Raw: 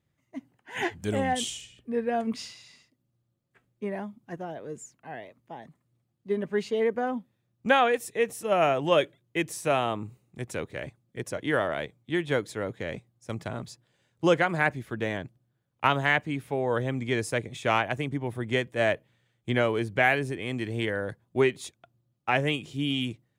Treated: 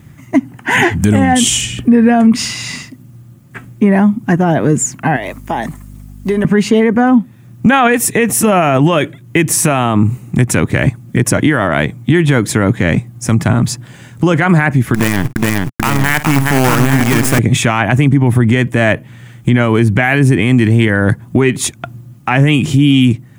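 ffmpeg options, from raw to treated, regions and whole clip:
-filter_complex "[0:a]asettb=1/sr,asplit=3[a][b][c];[a]atrim=end=5.164[d];[b]atrim=start=5.16:end=6.45,asetpts=PTS-STARTPTS,afade=t=in:d=0.004:c=qsin,afade=t=out:st=1.286:d=0.004:c=qsin,bass=f=250:g=-13,treble=f=4k:g=7,acompressor=threshold=-46dB:ratio=3:attack=3.2:release=140:knee=1:detection=peak,aeval=exprs='val(0)+0.000398*(sin(2*PI*50*n/s)+sin(2*PI*2*50*n/s)/2+sin(2*PI*3*50*n/s)/3+sin(2*PI*4*50*n/s)/4+sin(2*PI*5*50*n/s)/5)':c=same[e];[c]atrim=start=6.446[f];[d][e]acrossfade=d=0.004:c1=hsin:c2=qsin[g];[g][f]acrossfade=d=0.004:c1=qsin:c2=hsin,asettb=1/sr,asplit=3[h][i][j];[h]atrim=end=14.944[k];[i]atrim=start=14.94:end=17.39,asetpts=PTS-STARTPTS,afade=t=in:d=0.004:c=qsin,afade=t=out:st=2.446:d=0.004:c=qsin,acompressor=threshold=-31dB:ratio=3:attack=3.2:release=140:knee=1:detection=peak,acrusher=bits=6:dc=4:mix=0:aa=0.000001,aecho=1:1:52|418|855:0.119|0.355|0.596,atrim=end_sample=108045[l];[j]atrim=start=17.386[m];[k][l]acrossfade=d=0.004:c1=hsin:c2=qsin[n];[n][m]acrossfade=d=0.004:c1=qsin:c2=hsin,equalizer=f=125:t=o:w=1:g=4,equalizer=f=250:t=o:w=1:g=5,equalizer=f=500:t=o:w=1:g=-9,equalizer=f=4k:t=o:w=1:g=-8,acompressor=threshold=-45dB:ratio=2,alimiter=level_in=35.5dB:limit=-1dB:release=50:level=0:latency=1,volume=-1dB"

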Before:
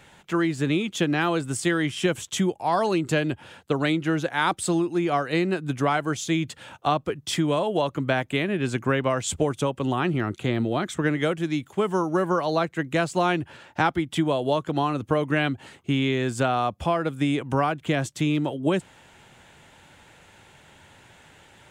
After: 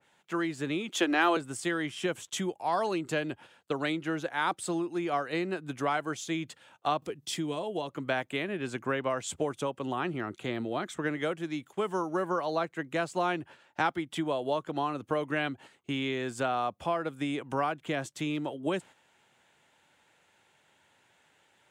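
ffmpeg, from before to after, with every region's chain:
-filter_complex "[0:a]asettb=1/sr,asplit=3[a][b][c];[a]atrim=end=0.894[d];[b]atrim=start=0.89:end=1.37,asetpts=PTS-STARTPTS,afade=t=in:d=0.004:c=qsin,afade=t=out:st=0.476:d=0.004:c=qsin,highpass=f=280:w=0.5412,highpass=f=280:w=1.3066,equalizer=f=470:t=o:w=0.23:g=-6,acontrast=73[e];[c]atrim=start=1.366[f];[d][e]acrossfade=d=0.004:c1=hsin:c2=qsin[g];[g][f]acrossfade=d=0.004:c1=qsin:c2=hsin,asettb=1/sr,asplit=3[h][i][j];[h]atrim=end=7.024[k];[i]atrim=start=7.02:end=7.9,asetpts=PTS-STARTPTS,afade=t=in:d=0.004:c=qsin,afade=t=out:st=0.876:d=0.004:c=qsin,acompressor=mode=upward:threshold=-31dB:ratio=2.5:attack=3.2:release=140:knee=2.83:detection=peak,equalizer=f=1.3k:w=0.85:g=-7.5,bandreject=f=570:w=11[l];[j]atrim=start=7.896[m];[k][l]acrossfade=d=0.004:c1=hsin:c2=qsin[n];[n][m]acrossfade=d=0.004:c1=qsin:c2=hsin,agate=range=-8dB:threshold=-40dB:ratio=16:detection=peak,highpass=f=330:p=1,adynamicequalizer=threshold=0.0112:dfrequency=1900:dqfactor=0.7:tfrequency=1900:tqfactor=0.7:attack=5:release=100:ratio=0.375:range=2:mode=cutabove:tftype=highshelf,volume=-5dB"

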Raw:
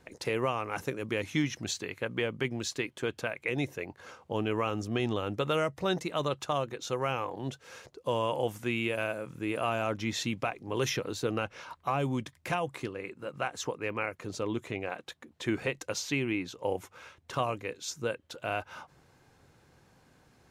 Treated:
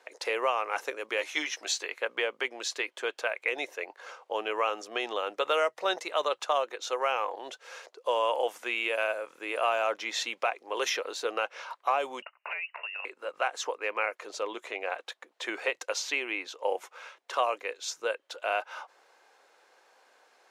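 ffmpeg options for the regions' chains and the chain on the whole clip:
-filter_complex "[0:a]asettb=1/sr,asplit=3[a][b][c];[a]atrim=end=1.174[d];[b]atrim=start=1.17:end=1.87,asetpts=PTS-STARTPTS,afade=t=in:d=0.004:c=qsin,afade=t=out:st=0.696:d=0.004:c=qsin,bass=f=250:g=-9,treble=f=4k:g=2,asplit=2[e][f];[f]adelay=13,volume=-6dB[g];[e][g]amix=inputs=2:normalize=0,atrim=end_sample=30870[h];[c]atrim=start=1.866[i];[d][h]acrossfade=d=0.004:c1=hsin:c2=qsin[j];[j][i]acrossfade=d=0.004:c1=qsin:c2=hsin,asettb=1/sr,asplit=3[k][l][m];[k]atrim=end=12.224[n];[l]atrim=start=12.22:end=13.05,asetpts=PTS-STARTPTS,afade=t=in:d=0.004:c=qsin,afade=t=out:st=0.826:d=0.004:c=qsin,highpass=f=280:w=0.5412,highpass=f=280:w=1.3066,lowpass=f=2.6k:t=q:w=0.5098,lowpass=f=2.6k:t=q:w=0.6013,lowpass=f=2.6k:t=q:w=0.9,lowpass=f=2.6k:t=q:w=2.563,afreqshift=-3100,acompressor=threshold=-38dB:ratio=3:attack=3.2:release=140:knee=1:detection=peak[o];[m]atrim=start=13.046[p];[n][o]acrossfade=d=0.004:c1=hsin:c2=qsin[q];[q][p]acrossfade=d=0.004:c1=qsin:c2=hsin,highpass=f=490:w=0.5412,highpass=f=490:w=1.3066,highshelf=f=9.7k:g=-11,volume=4.5dB"

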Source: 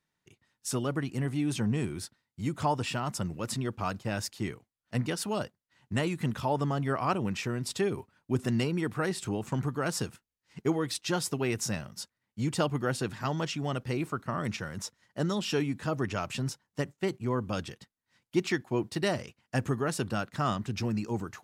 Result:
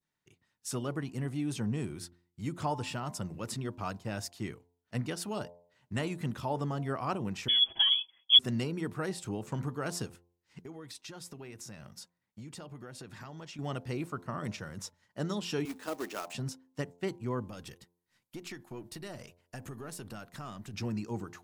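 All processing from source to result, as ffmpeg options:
-filter_complex "[0:a]asettb=1/sr,asplit=3[a][b][c];[a]atrim=end=7.484[d];[b]atrim=start=7.48:end=8.39,asetpts=PTS-STARTPTS,afade=t=in:d=0.004:c=qsin,afade=t=out:st=0.906:d=0.004:c=qsin,equalizer=f=150:w=0.5:g=12,aecho=1:1:6.7:0.95,atrim=end_sample=40131,lowpass=f=3k:t=q:w=0.5098,lowpass=f=3k:t=q:w=0.6013,lowpass=f=3k:t=q:w=0.9,lowpass=f=3k:t=q:w=2.563,afreqshift=-3500[e];[c]atrim=start=8.386[f];[d][e]acrossfade=d=0.004:c1=hsin:c2=qsin[g];[g][f]acrossfade=d=0.004:c1=qsin:c2=hsin,asettb=1/sr,asplit=3[h][i][j];[h]atrim=end=10.634[k];[i]atrim=start=10.63:end=13.59,asetpts=PTS-STARTPTS,afade=t=in:d=0.004:c=qsin,afade=t=out:st=2.956:d=0.004:c=qsin,bandreject=f=3k:w=27,acompressor=threshold=-38dB:ratio=8:attack=3.2:release=140:knee=1:detection=peak[l];[j]atrim=start=13.586[m];[k][l]acrossfade=d=0.004:c1=hsin:c2=qsin[n];[n][m]acrossfade=d=0.004:c1=qsin:c2=hsin,asettb=1/sr,asplit=3[o][p][q];[o]atrim=end=15.654[r];[p]atrim=start=15.65:end=16.33,asetpts=PTS-STARTPTS,afade=t=in:d=0.004:c=qsin,afade=t=out:st=0.676:d=0.004:c=qsin,highpass=f=270:w=0.5412,highpass=f=270:w=1.3066,acrusher=bits=2:mode=log:mix=0:aa=0.000001[s];[q]atrim=start=16.326[t];[r][s]acrossfade=d=0.004:c1=hsin:c2=qsin[u];[u][t]acrossfade=d=0.004:c1=qsin:c2=hsin,asettb=1/sr,asplit=3[v][w][x];[v]atrim=end=17.494[y];[w]atrim=start=17.49:end=20.74,asetpts=PTS-STARTPTS,afade=t=in:d=0.004:c=qsin,afade=t=out:st=3.246:d=0.004:c=qsin,aeval=exprs='if(lt(val(0),0),0.708*val(0),val(0))':c=same,equalizer=f=13k:t=o:w=1:g=9.5,acompressor=threshold=-36dB:ratio=4:attack=3.2:release=140:knee=1:detection=peak[z];[x]atrim=start=20.736[aa];[y][z]acrossfade=d=0.004:c1=hsin:c2=qsin[ab];[ab][aa]acrossfade=d=0.004:c1=qsin:c2=hsin,bandreject=f=87.11:t=h:w=4,bandreject=f=174.22:t=h:w=4,bandreject=f=261.33:t=h:w=4,bandreject=f=348.44:t=h:w=4,bandreject=f=435.55:t=h:w=4,bandreject=f=522.66:t=h:w=4,bandreject=f=609.77:t=h:w=4,bandreject=f=696.88:t=h:w=4,bandreject=f=783.99:t=h:w=4,bandreject=f=871.1:t=h:w=4,bandreject=f=958.21:t=h:w=4,bandreject=f=1.04532k:t=h:w=4,adynamicequalizer=threshold=0.00501:dfrequency=2100:dqfactor=0.88:tfrequency=2100:tqfactor=0.88:attack=5:release=100:ratio=0.375:range=1.5:mode=cutabove:tftype=bell,volume=-4dB"

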